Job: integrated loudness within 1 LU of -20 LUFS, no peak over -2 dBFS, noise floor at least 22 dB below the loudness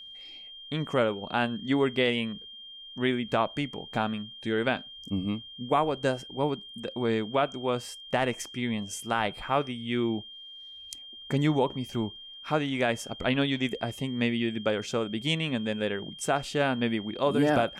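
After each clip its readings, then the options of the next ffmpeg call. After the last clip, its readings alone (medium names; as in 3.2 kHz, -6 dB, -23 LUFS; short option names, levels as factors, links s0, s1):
steady tone 3.2 kHz; tone level -43 dBFS; loudness -29.0 LUFS; peak level -13.0 dBFS; loudness target -20.0 LUFS
-> -af "bandreject=f=3200:w=30"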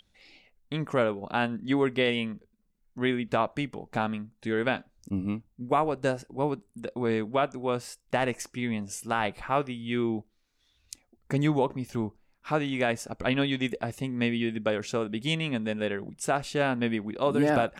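steady tone not found; loudness -29.5 LUFS; peak level -13.0 dBFS; loudness target -20.0 LUFS
-> -af "volume=2.99"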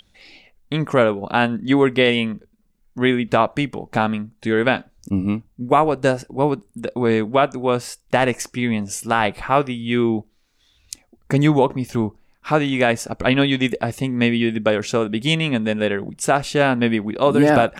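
loudness -20.0 LUFS; peak level -3.5 dBFS; noise floor -61 dBFS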